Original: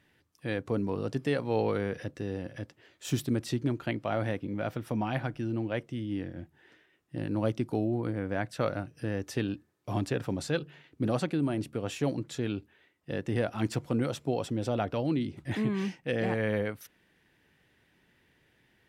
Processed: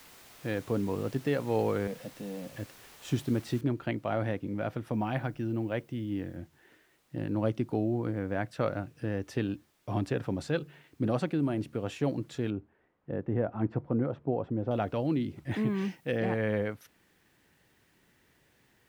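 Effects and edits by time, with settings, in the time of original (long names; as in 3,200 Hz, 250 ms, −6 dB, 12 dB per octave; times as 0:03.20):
0:01.87–0:02.53: phaser with its sweep stopped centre 360 Hz, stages 6
0:03.61: noise floor change −48 dB −66 dB
0:04.93–0:06.37: high-shelf EQ 11,000 Hz +7 dB
0:12.50–0:14.71: low-pass filter 1,200 Hz
0:15.50–0:16.18: high-shelf EQ 10,000 Hz +8.5 dB
whole clip: high-shelf EQ 4,000 Hz −9.5 dB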